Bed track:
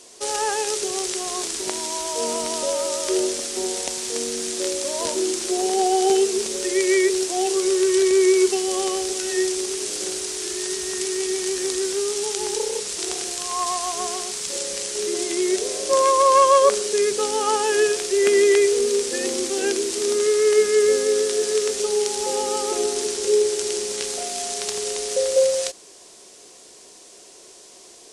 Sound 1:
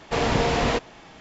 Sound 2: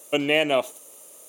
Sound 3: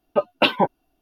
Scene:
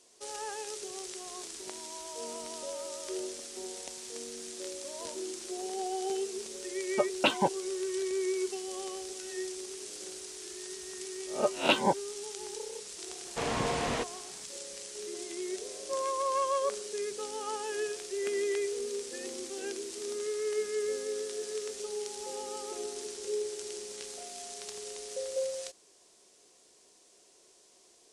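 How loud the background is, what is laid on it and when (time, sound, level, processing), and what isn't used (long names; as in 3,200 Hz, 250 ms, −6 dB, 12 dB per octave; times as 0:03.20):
bed track −15.5 dB
0:06.82: mix in 3 −8.5 dB
0:11.27: mix in 3 −9 dB + peak hold with a rise ahead of every peak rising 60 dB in 0.32 s
0:13.25: mix in 1 −9 dB + low-shelf EQ 76 Hz −10 dB
not used: 2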